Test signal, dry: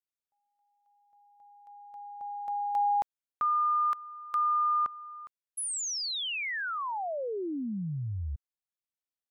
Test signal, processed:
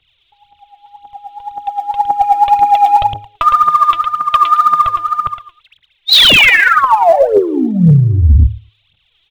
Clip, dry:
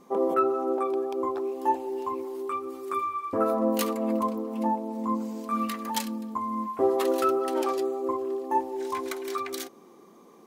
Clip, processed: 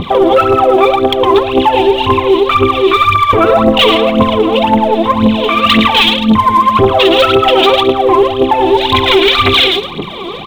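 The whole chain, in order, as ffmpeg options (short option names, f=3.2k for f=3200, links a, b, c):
-af "lowshelf=f=170:t=q:w=1.5:g=12,bandreject=f=105.7:t=h:w=4,bandreject=f=211.4:t=h:w=4,bandreject=f=317.1:t=h:w=4,bandreject=f=422.8:t=h:w=4,bandreject=f=528.5:t=h:w=4,bandreject=f=634.2:t=h:w=4,acompressor=threshold=-38dB:ratio=5:attack=5.7:release=28:knee=6:detection=peak,aexciter=amount=4.6:drive=9:freq=2.5k,aresample=8000,asoftclip=type=tanh:threshold=-28dB,aresample=44100,aecho=1:1:111|222|333:0.447|0.0849|0.0161,aphaser=in_gain=1:out_gain=1:delay=3.1:decay=0.74:speed=1.9:type=triangular,apsyclip=29dB,volume=-2dB"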